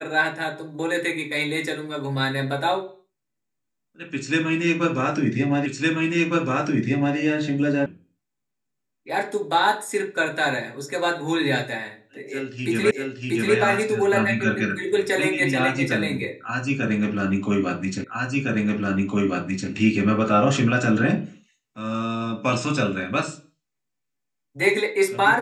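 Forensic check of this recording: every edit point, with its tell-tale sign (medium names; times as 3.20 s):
5.66 s: repeat of the last 1.51 s
7.86 s: sound stops dead
12.91 s: repeat of the last 0.64 s
18.04 s: repeat of the last 1.66 s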